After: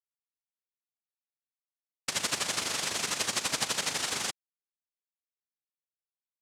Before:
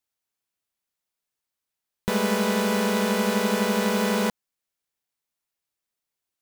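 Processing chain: static phaser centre 2.2 kHz, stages 8; power-law waveshaper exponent 2; noise-vocoded speech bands 1; trim +1.5 dB

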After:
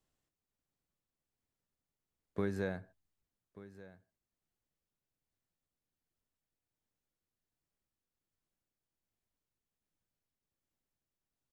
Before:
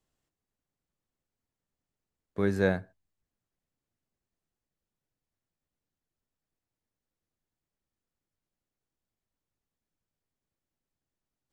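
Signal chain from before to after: compression 3:1, threshold -29 dBFS, peak gain reduction 8 dB; tremolo 1.3 Hz, depth 29%; delay 1185 ms -17.5 dB; trim -2 dB

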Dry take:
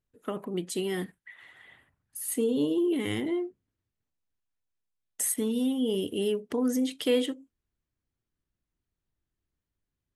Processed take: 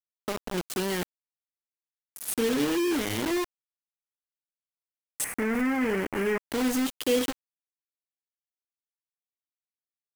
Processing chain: bit crusher 5-bit; 5.24–6.51 s: resonant high shelf 2.8 kHz -10 dB, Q 3

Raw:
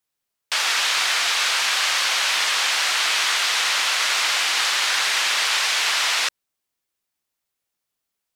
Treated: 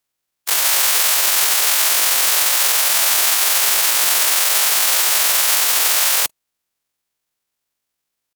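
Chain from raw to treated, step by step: spectral peaks clipped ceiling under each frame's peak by 25 dB; pitch shift +11 st; trim +7 dB

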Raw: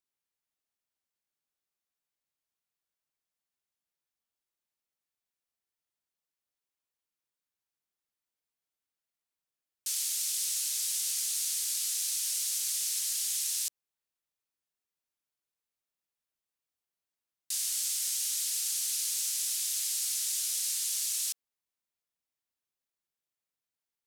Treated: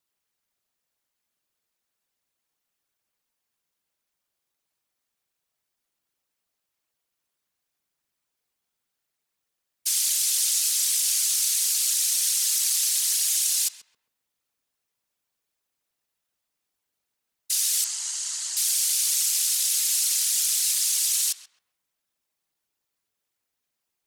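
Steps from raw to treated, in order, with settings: whisper effect; 17.84–18.57 s: cabinet simulation 320–7300 Hz, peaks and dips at 920 Hz +9 dB, 2.4 kHz -9 dB, 3.6 kHz -9 dB, 5.4 kHz -7 dB; filtered feedback delay 132 ms, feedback 38%, low-pass 1.3 kHz, level -7.5 dB; trim +8.5 dB

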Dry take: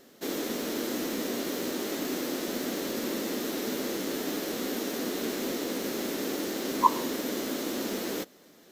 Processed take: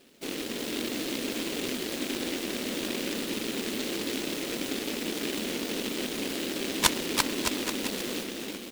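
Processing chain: steep low-pass 5.2 kHz 48 dB/octave; bouncing-ball echo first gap 340 ms, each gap 0.8×, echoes 5; delay time shaken by noise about 2.9 kHz, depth 0.25 ms; trim -2 dB

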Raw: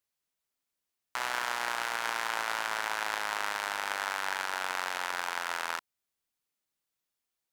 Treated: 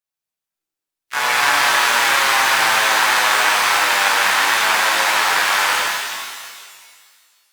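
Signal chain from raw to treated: spectral noise reduction 17 dB; harmony voices +3 st 0 dB, +7 st -9 dB, +12 st -17 dB; pitch-shifted reverb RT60 1.9 s, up +12 st, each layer -8 dB, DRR -5.5 dB; trim +7.5 dB

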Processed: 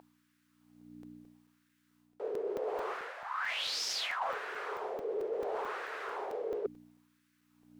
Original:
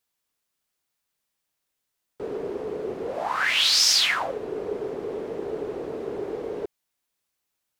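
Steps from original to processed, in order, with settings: high-pass 330 Hz 24 dB/octave; treble shelf 3.3 kHz -7.5 dB; hum 60 Hz, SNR 10 dB; LFO high-pass sine 0.72 Hz 420–1600 Hz; reverse; compression 12:1, threshold -39 dBFS, peak gain reduction 21 dB; reverse; saturation -29.5 dBFS, distortion -27 dB; crackling interface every 0.22 s, samples 128, zero, from 0.81 s; trim +6.5 dB

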